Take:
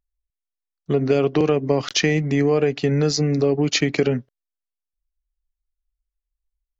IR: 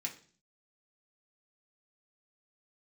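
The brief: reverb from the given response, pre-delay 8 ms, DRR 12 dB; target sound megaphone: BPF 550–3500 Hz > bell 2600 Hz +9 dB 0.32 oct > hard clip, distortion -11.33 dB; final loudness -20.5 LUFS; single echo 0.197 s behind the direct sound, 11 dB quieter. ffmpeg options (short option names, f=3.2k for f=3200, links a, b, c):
-filter_complex "[0:a]aecho=1:1:197:0.282,asplit=2[a][b];[1:a]atrim=start_sample=2205,adelay=8[c];[b][c]afir=irnorm=-1:irlink=0,volume=-12dB[d];[a][d]amix=inputs=2:normalize=0,highpass=550,lowpass=3.5k,equalizer=f=2.6k:t=o:w=0.32:g=9,asoftclip=type=hard:threshold=-20dB,volume=5.5dB"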